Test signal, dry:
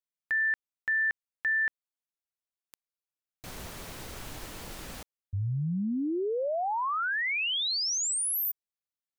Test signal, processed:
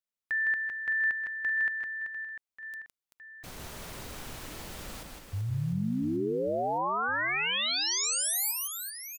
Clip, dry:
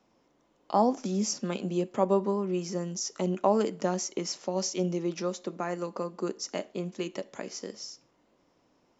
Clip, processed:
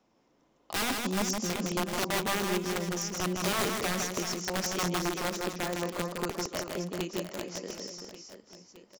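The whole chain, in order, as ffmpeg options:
-filter_complex "[0:a]aeval=exprs='(mod(12.6*val(0)+1,2)-1)/12.6':c=same,asplit=2[a][b];[b]aecho=0:1:160|384|697.6|1137|1751:0.631|0.398|0.251|0.158|0.1[c];[a][c]amix=inputs=2:normalize=0,volume=-2dB"

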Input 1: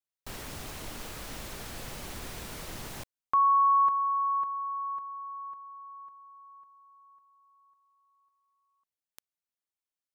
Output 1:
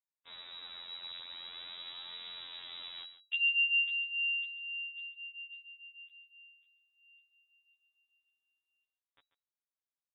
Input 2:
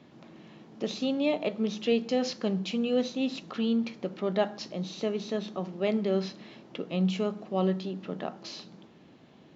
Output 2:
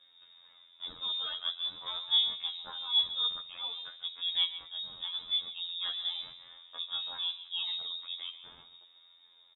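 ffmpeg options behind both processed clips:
-filter_complex "[0:a]equalizer=f=980:w=0.96:g=-10,acrossover=split=420|940[a][b][c];[a]asoftclip=type=tanh:threshold=-33.5dB[d];[b]dynaudnorm=f=340:g=9:m=12dB[e];[d][e][c]amix=inputs=3:normalize=0,afftfilt=real='hypot(re,im)*cos(PI*b)':imag='0':win_size=2048:overlap=0.75,highshelf=f=2.4k:g=3,flanger=delay=6.8:depth=8.9:regen=-2:speed=0.22:shape=sinusoidal,lowpass=f=3.3k:t=q:w=0.5098,lowpass=f=3.3k:t=q:w=0.6013,lowpass=f=3.3k:t=q:w=0.9,lowpass=f=3.3k:t=q:w=2.563,afreqshift=-3900,bandreject=f=740:w=12,asplit=2[f][g];[g]aecho=0:1:140:0.211[h];[f][h]amix=inputs=2:normalize=0"

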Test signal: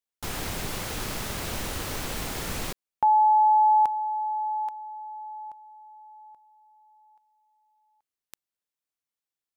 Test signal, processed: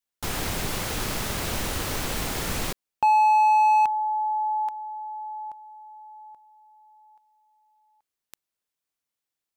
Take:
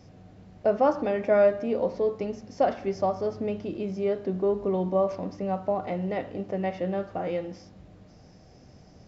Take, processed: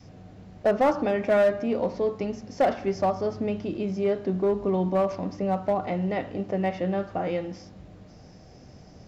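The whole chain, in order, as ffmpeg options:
-filter_complex "[0:a]adynamicequalizer=threshold=0.0112:dfrequency=490:dqfactor=1.9:tfrequency=490:tqfactor=1.9:attack=5:release=100:ratio=0.375:range=2.5:mode=cutabove:tftype=bell,asplit=2[a][b];[b]aeval=exprs='0.0841*(abs(mod(val(0)/0.0841+3,4)-2)-1)':c=same,volume=-6dB[c];[a][c]amix=inputs=2:normalize=0"

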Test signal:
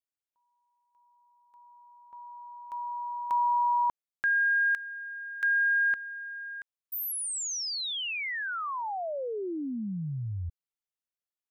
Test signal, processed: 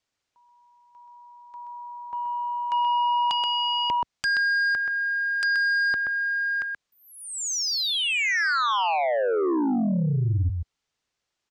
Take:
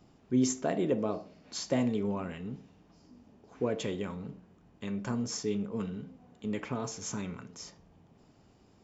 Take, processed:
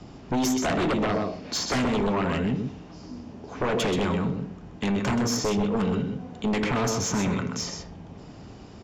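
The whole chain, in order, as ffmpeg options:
-filter_complex "[0:a]acrossover=split=1700[a][b];[b]acompressor=threshold=-42dB:ratio=6:attack=51:release=309:knee=6:detection=rms[c];[a][c]amix=inputs=2:normalize=0,lowpass=f=6.9k:w=0.5412,lowpass=f=6.9k:w=1.3066,acrossover=split=310|900[d][e][f];[d]acompressor=threshold=-39dB:ratio=4[g];[e]acompressor=threshold=-39dB:ratio=4[h];[f]acompressor=threshold=-35dB:ratio=4[i];[g][h][i]amix=inputs=3:normalize=0,aecho=1:1:128:0.473,aeval=exprs='0.0891*sin(PI/2*3.98*val(0)/0.0891)':c=same,equalizer=f=68:t=o:w=2.1:g=2.5"

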